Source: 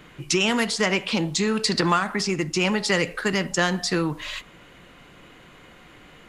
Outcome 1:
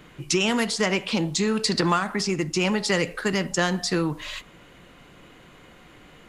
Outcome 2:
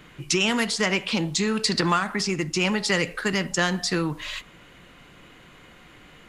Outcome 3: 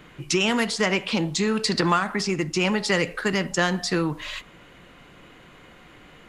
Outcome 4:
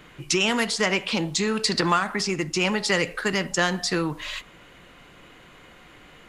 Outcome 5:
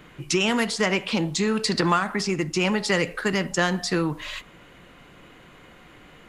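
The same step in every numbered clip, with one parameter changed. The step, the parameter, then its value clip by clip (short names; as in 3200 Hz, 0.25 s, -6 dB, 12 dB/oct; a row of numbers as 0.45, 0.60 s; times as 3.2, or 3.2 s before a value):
bell, frequency: 2000, 560, 15000, 180, 5200 Hz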